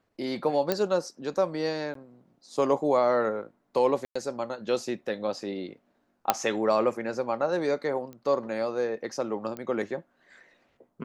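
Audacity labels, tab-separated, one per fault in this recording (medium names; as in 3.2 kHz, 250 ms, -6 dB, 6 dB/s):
0.720000	0.720000	pop -11 dBFS
1.940000	1.950000	dropout 13 ms
4.050000	4.160000	dropout 105 ms
6.300000	6.300000	pop -6 dBFS
8.130000	8.130000	pop -29 dBFS
9.570000	9.570000	pop -22 dBFS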